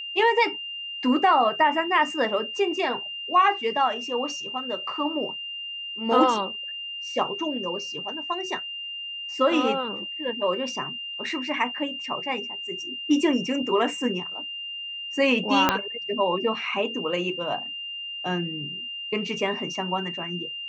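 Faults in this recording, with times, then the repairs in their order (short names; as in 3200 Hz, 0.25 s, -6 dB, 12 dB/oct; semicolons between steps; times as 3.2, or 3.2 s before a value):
tone 2800 Hz -32 dBFS
15.69 pop -4 dBFS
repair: de-click; notch 2800 Hz, Q 30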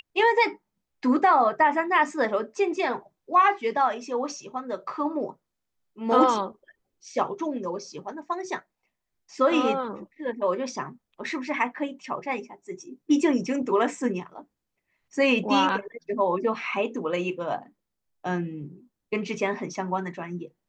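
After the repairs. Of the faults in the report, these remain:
15.69 pop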